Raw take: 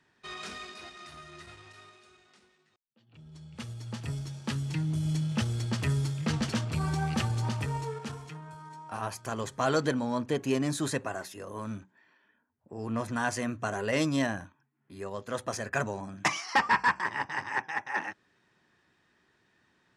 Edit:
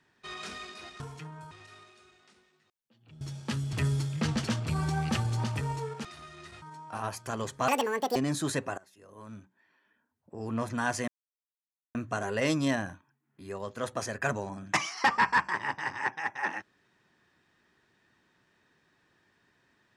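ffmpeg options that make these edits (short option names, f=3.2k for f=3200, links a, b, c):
-filter_complex "[0:a]asplit=11[a][b][c][d][e][f][g][h][i][j][k];[a]atrim=end=1.002[l];[b]atrim=start=8.098:end=8.612[m];[c]atrim=start=1.568:end=3.272[n];[d]atrim=start=4.198:end=4.722[o];[e]atrim=start=5.778:end=8.102[p];[f]atrim=start=0.998:end=1.572[q];[g]atrim=start=8.608:end=9.674[r];[h]atrim=start=9.67:end=10.54,asetpts=PTS-STARTPTS,asetrate=80262,aresample=44100[s];[i]atrim=start=10.536:end=11.16,asetpts=PTS-STARTPTS,afade=t=out:st=0.62:d=0.004:c=hsin:silence=0.0707946[t];[j]atrim=start=11.16:end=13.46,asetpts=PTS-STARTPTS,afade=t=in:d=1.57:silence=0.0707946,afade=t=out:st=2.296:d=0.004:c=hsin,apad=pad_dur=0.87[u];[k]atrim=start=13.46,asetpts=PTS-STARTPTS,afade=t=in:d=0.004:c=hsin[v];[l][m]acrossfade=d=0.004:c1=hsin:c2=hsin[w];[w][n]acrossfade=d=0.004:c1=hsin:c2=hsin[x];[x][o]acrossfade=d=0.004:c1=hsin:c2=hsin[y];[y][p]acrossfade=d=0.004:c1=hsin:c2=hsin[z];[z][q]acrossfade=d=0.004:c1=hsin:c2=hsin[aa];[aa][r]acrossfade=d=0.004:c1=hsin:c2=hsin[ab];[ab][s]acrossfade=d=0.004:c1=hsin:c2=hsin[ac];[t][u][v]concat=n=3:v=0:a=1[ad];[ac][ad]acrossfade=d=0.004:c1=hsin:c2=hsin"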